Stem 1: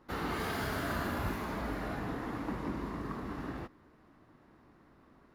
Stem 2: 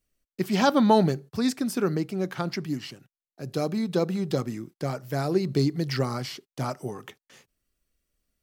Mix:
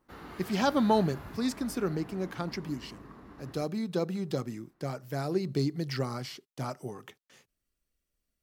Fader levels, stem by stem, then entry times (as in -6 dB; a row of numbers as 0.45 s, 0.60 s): -10.5 dB, -5.5 dB; 0.00 s, 0.00 s